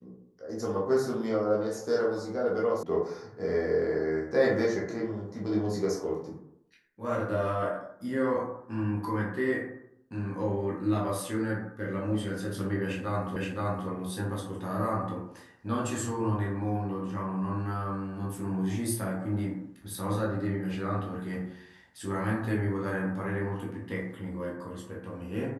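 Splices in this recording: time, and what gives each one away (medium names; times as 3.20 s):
2.83 s: sound stops dead
13.36 s: repeat of the last 0.52 s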